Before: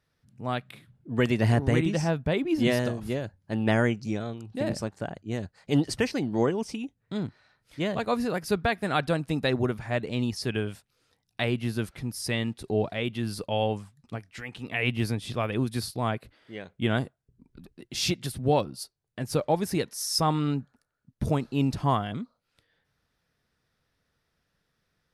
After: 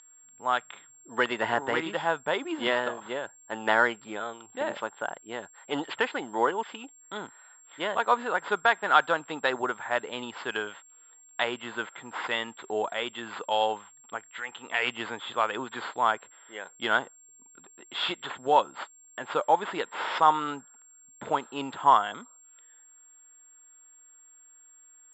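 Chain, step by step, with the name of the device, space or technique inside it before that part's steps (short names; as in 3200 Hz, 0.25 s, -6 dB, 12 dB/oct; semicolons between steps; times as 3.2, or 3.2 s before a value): toy sound module (decimation joined by straight lines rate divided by 4×; pulse-width modulation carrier 7500 Hz; speaker cabinet 650–3900 Hz, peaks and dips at 650 Hz -3 dB, 930 Hz +7 dB, 1400 Hz +6 dB, 2400 Hz -6 dB, 3400 Hz +8 dB); gain +5 dB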